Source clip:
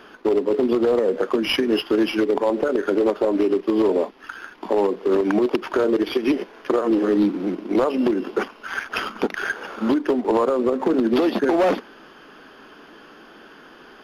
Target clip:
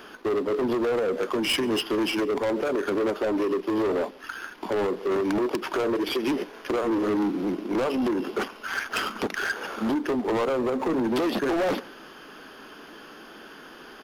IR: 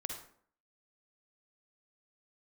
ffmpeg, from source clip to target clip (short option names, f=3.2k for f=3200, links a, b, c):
-filter_complex "[0:a]asoftclip=type=tanh:threshold=-21.5dB,highshelf=f=6.1k:g=10.5,asplit=2[a][b];[b]adelay=139.9,volume=-24dB,highshelf=f=4k:g=-3.15[c];[a][c]amix=inputs=2:normalize=0"